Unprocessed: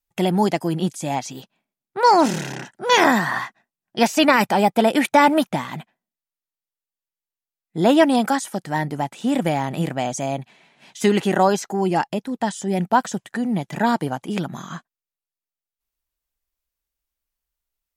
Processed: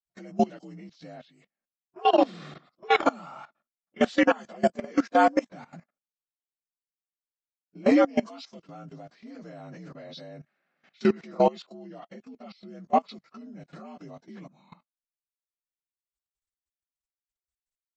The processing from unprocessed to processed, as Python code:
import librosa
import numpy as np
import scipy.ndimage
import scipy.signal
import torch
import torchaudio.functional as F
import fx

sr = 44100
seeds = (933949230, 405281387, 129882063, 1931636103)

y = fx.partial_stretch(x, sr, pct=84)
y = fx.level_steps(y, sr, step_db=17)
y = fx.upward_expand(y, sr, threshold_db=-35.0, expansion=1.5)